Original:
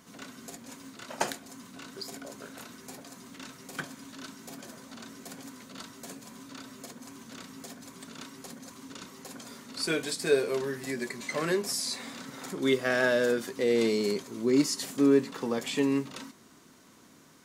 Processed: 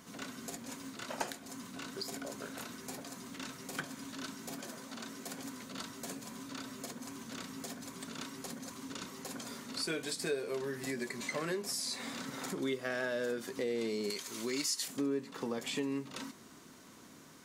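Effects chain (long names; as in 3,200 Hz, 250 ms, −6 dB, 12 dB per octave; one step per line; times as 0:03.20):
0:04.56–0:05.41: high-pass filter 150 Hz 6 dB per octave
0:14.10–0:14.88: tilt shelving filter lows −9.5 dB, about 930 Hz
downward compressor 3 to 1, threshold −37 dBFS, peak gain reduction 14.5 dB
level +1 dB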